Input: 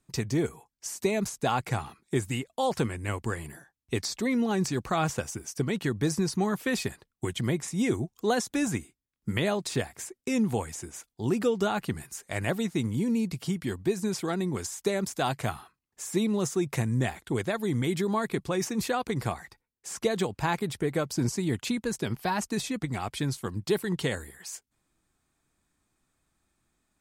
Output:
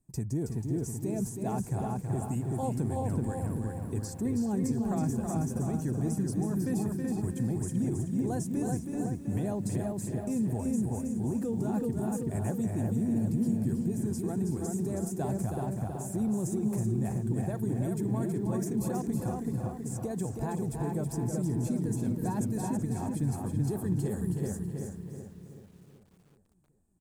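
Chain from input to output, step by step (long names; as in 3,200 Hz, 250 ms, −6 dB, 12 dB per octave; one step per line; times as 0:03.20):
drawn EQ curve 350 Hz 0 dB, 3,400 Hz −25 dB, 8,300 Hz −3 dB
feedback echo with a low-pass in the loop 379 ms, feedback 48%, low-pass 2,700 Hz, level −3 dB
brickwall limiter −22.5 dBFS, peak gain reduction 9.5 dB
comb filter 1.2 ms, depth 37%
feedback echo at a low word length 322 ms, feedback 35%, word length 10 bits, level −5.5 dB
level −1 dB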